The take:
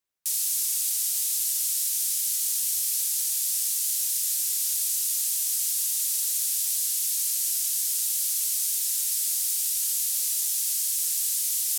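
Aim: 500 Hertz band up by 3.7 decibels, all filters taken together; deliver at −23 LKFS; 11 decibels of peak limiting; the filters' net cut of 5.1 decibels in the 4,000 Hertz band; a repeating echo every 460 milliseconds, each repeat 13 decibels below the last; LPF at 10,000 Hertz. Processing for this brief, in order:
low-pass filter 10,000 Hz
parametric band 500 Hz +5 dB
parametric band 4,000 Hz −7 dB
brickwall limiter −27.5 dBFS
repeating echo 460 ms, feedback 22%, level −13 dB
level +10.5 dB

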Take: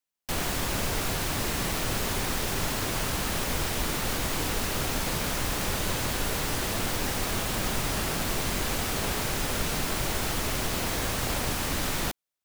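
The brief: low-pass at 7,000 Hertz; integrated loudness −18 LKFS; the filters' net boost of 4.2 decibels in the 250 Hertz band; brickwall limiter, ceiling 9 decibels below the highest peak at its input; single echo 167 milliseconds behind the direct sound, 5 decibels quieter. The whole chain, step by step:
low-pass filter 7,000 Hz
parametric band 250 Hz +5.5 dB
brickwall limiter −24 dBFS
single-tap delay 167 ms −5 dB
level +14.5 dB

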